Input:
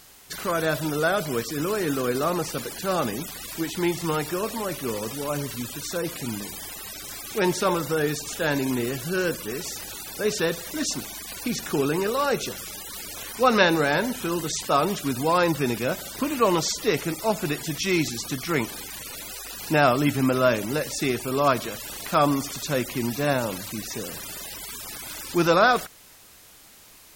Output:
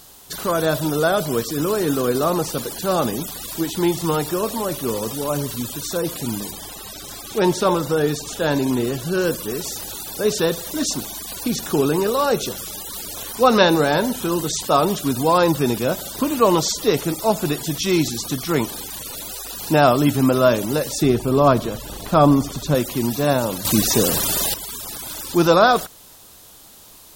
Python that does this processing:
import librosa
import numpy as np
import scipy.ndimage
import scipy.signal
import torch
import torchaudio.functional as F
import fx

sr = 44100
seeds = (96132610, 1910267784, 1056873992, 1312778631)

y = fx.high_shelf(x, sr, hz=9000.0, db=-7.5, at=(6.51, 9.22))
y = fx.tilt_eq(y, sr, slope=-2.0, at=(21.02, 22.75))
y = fx.edit(y, sr, fx.clip_gain(start_s=23.65, length_s=0.89, db=10.5), tone=tone)
y = fx.curve_eq(y, sr, hz=(1000.0, 2200.0, 3500.0, 5100.0, 13000.0), db=(0, -9, 0, -2, 1))
y = F.gain(torch.from_numpy(y), 5.5).numpy()